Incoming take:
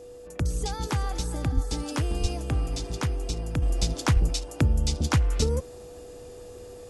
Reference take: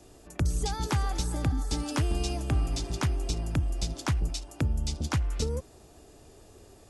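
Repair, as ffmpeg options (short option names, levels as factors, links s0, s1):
-filter_complex "[0:a]bandreject=f=490:w=30,asplit=3[s0][s1][s2];[s0]afade=t=out:st=1.54:d=0.02[s3];[s1]highpass=f=140:w=0.5412,highpass=f=140:w=1.3066,afade=t=in:st=1.54:d=0.02,afade=t=out:st=1.66:d=0.02[s4];[s2]afade=t=in:st=1.66:d=0.02[s5];[s3][s4][s5]amix=inputs=3:normalize=0,asplit=3[s6][s7][s8];[s6]afade=t=out:st=2.21:d=0.02[s9];[s7]highpass=f=140:w=0.5412,highpass=f=140:w=1.3066,afade=t=in:st=2.21:d=0.02,afade=t=out:st=2.33:d=0.02[s10];[s8]afade=t=in:st=2.33:d=0.02[s11];[s9][s10][s11]amix=inputs=3:normalize=0,asplit=3[s12][s13][s14];[s12]afade=t=out:st=4.13:d=0.02[s15];[s13]highpass=f=140:w=0.5412,highpass=f=140:w=1.3066,afade=t=in:st=4.13:d=0.02,afade=t=out:st=4.25:d=0.02[s16];[s14]afade=t=in:st=4.25:d=0.02[s17];[s15][s16][s17]amix=inputs=3:normalize=0,asetnsamples=n=441:p=0,asendcmd='3.62 volume volume -5.5dB',volume=1"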